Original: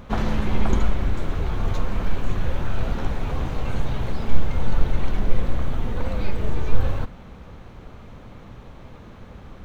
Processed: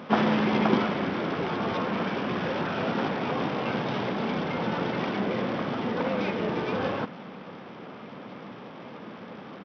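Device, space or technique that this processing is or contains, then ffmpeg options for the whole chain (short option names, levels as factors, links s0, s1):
Bluetooth headset: -af "highpass=f=180:w=0.5412,highpass=f=180:w=1.3066,aresample=8000,aresample=44100,volume=1.78" -ar 44100 -c:a sbc -b:a 64k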